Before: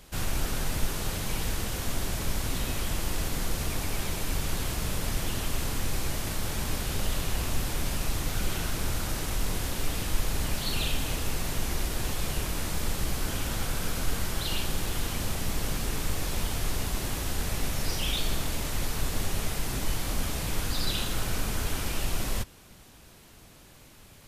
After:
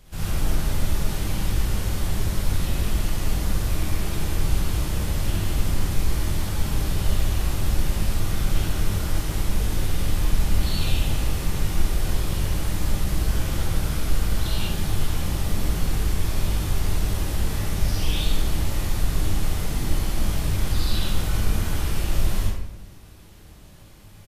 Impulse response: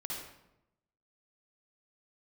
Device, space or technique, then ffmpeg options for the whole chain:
bathroom: -filter_complex "[0:a]lowshelf=f=170:g=8,asplit=2[a][b];[b]adelay=20,volume=-12dB[c];[a][c]amix=inputs=2:normalize=0[d];[1:a]atrim=start_sample=2205[e];[d][e]afir=irnorm=-1:irlink=0"

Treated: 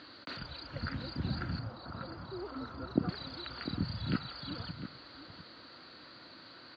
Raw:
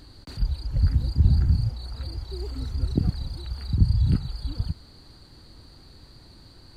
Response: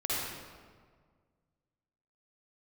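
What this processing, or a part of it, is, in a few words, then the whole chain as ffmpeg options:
phone earpiece: -filter_complex "[0:a]highpass=390,equalizer=f=410:t=q:w=4:g=-8,equalizer=f=830:t=q:w=4:g=-8,equalizer=f=1.4k:t=q:w=4:g=5,lowpass=f=3.8k:w=0.5412,lowpass=f=3.8k:w=1.3066,asettb=1/sr,asplit=3[a][b][c];[a]atrim=end=1.594[d];[b]atrim=start=1.59:end=3.09,asetpts=PTS-STARTPTS,afade=t=in:d=0.004:c=qsin,afade=t=out:st=1.496:d=0.004:c=qsin,highshelf=f=1.6k:t=q:w=1.5:g=-8.5[e];[c]atrim=start=3.086[f];[d][e]acrossfade=d=0.004:c1=hsin:c2=qsin[g];[g][f]acrossfade=d=0.004:c1=qsin:c2=hsin,asplit=2[h][i];[i]adelay=699.7,volume=-11dB,highshelf=f=4k:g=-15.7[j];[h][j]amix=inputs=2:normalize=0,volume=6dB"

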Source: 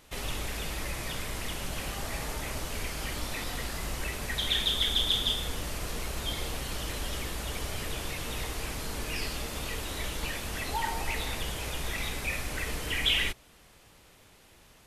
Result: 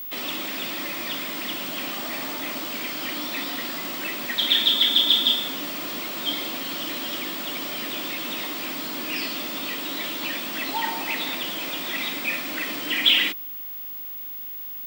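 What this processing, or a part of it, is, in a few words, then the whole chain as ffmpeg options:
old television with a line whistle: -af "highpass=f=220:w=0.5412,highpass=f=220:w=1.3066,equalizer=f=290:t=q:w=4:g=6,equalizer=f=450:t=q:w=4:g=-10,equalizer=f=810:t=q:w=4:g=-4,equalizer=f=1.6k:t=q:w=4:g=-3,equalizer=f=3.3k:t=q:w=4:g=3,equalizer=f=6.5k:t=q:w=4:g=-8,lowpass=f=7.8k:w=0.5412,lowpass=f=7.8k:w=1.3066,aeval=exprs='val(0)+0.0112*sin(2*PI*15625*n/s)':c=same,volume=7dB"

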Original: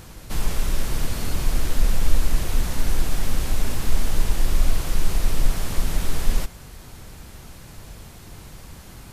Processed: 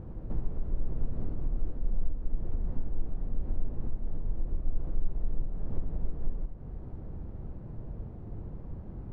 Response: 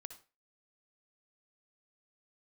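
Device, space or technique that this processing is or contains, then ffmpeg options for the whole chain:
television next door: -filter_complex "[0:a]acompressor=threshold=-28dB:ratio=4,lowpass=490[a];[1:a]atrim=start_sample=2205[b];[a][b]afir=irnorm=-1:irlink=0,volume=7dB"

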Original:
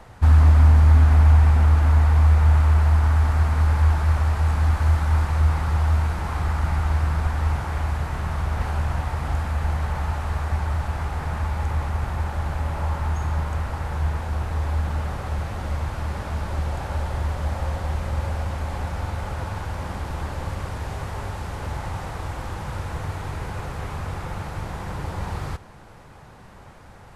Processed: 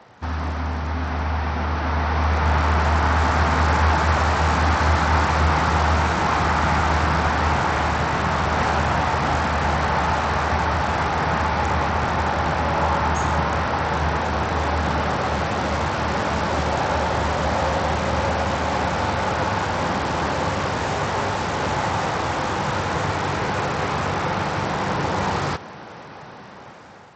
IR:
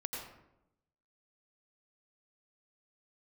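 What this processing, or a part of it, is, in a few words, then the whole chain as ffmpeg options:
Bluetooth headset: -af "highpass=180,dynaudnorm=f=870:g=5:m=12dB,aresample=16000,aresample=44100" -ar 32000 -c:a sbc -b:a 64k

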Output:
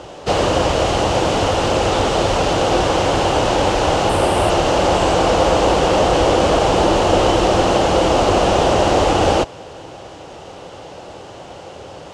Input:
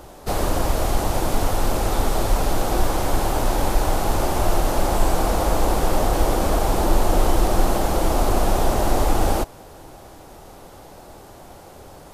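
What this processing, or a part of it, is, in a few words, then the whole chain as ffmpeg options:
car door speaker: -filter_complex "[0:a]highpass=84,equalizer=f=230:t=q:w=4:g=-4,equalizer=f=510:t=q:w=4:g=5,equalizer=f=2.9k:t=q:w=4:g=9,lowpass=f=7.1k:w=0.5412,lowpass=f=7.1k:w=1.3066,asettb=1/sr,asplit=3[a][b][c];[a]atrim=end=4.094[d];[b]atrim=start=4.09:end=4.5,asetpts=PTS-STARTPTS,afade=t=in:d=0.004:c=qsin,afade=t=out:st=0.406:d=0.004:c=qsin,highshelf=f=7.8k:t=q:w=3:g=6[e];[c]atrim=start=4.496[f];[d][e]acrossfade=d=0.004:c1=hsin:c2=qsin[g];[g][f]acrossfade=d=0.004:c1=qsin:c2=hsin,volume=7dB"

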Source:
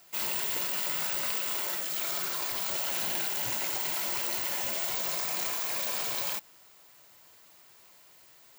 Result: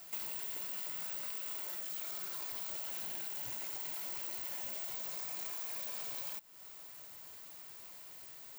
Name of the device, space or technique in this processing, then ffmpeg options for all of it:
ASMR close-microphone chain: -af "lowshelf=f=250:g=4,acompressor=threshold=-46dB:ratio=5,highshelf=f=11k:g=6,volume=1dB"

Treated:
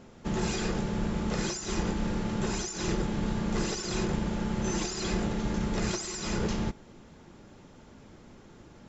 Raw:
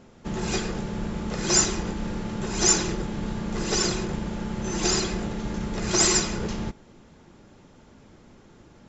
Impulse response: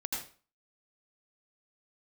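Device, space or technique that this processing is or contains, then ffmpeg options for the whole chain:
de-esser from a sidechain: -filter_complex "[0:a]asplit=2[a][b];[b]highpass=6.5k,apad=whole_len=391950[c];[a][c]sidechaincompress=threshold=-37dB:ratio=12:attack=0.8:release=73"

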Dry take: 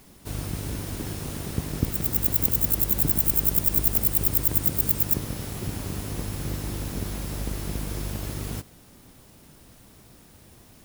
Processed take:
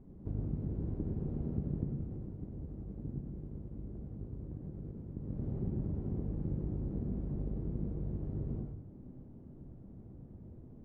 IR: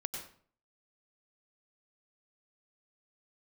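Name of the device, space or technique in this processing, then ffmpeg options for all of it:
television next door: -filter_complex "[0:a]acompressor=threshold=-33dB:ratio=5,lowpass=350[a];[1:a]atrim=start_sample=2205[b];[a][b]afir=irnorm=-1:irlink=0,volume=2dB"

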